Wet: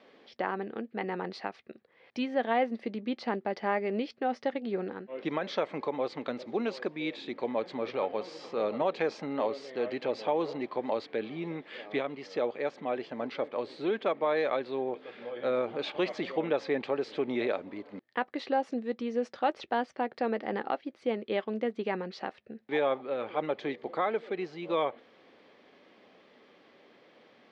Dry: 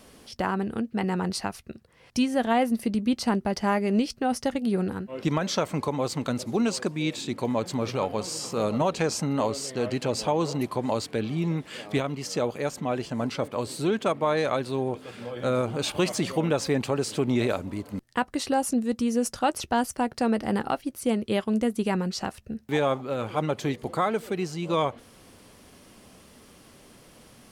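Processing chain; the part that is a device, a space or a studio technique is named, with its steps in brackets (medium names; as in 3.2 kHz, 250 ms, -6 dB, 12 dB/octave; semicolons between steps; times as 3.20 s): phone earpiece (cabinet simulation 410–3300 Hz, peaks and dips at 680 Hz -3 dB, 1 kHz -6 dB, 1.4 kHz -6 dB, 2.8 kHz -7 dB)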